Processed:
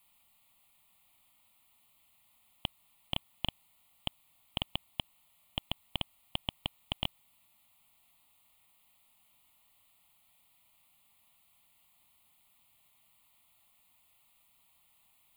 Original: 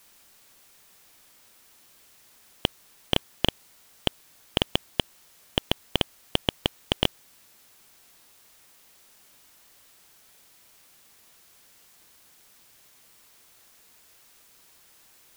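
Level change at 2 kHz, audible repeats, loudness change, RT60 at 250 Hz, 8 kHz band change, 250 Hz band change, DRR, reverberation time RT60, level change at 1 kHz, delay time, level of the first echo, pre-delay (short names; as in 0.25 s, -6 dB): -11.0 dB, none, -10.5 dB, none, -14.5 dB, -13.5 dB, none, none, -10.0 dB, none, none, none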